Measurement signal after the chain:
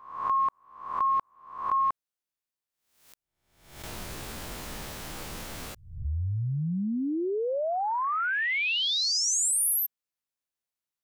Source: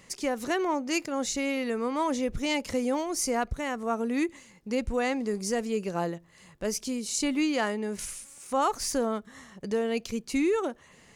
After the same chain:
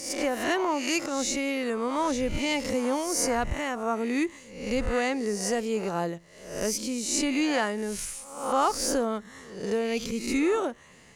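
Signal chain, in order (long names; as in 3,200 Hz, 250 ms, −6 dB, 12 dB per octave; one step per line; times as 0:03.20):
peak hold with a rise ahead of every peak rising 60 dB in 0.65 s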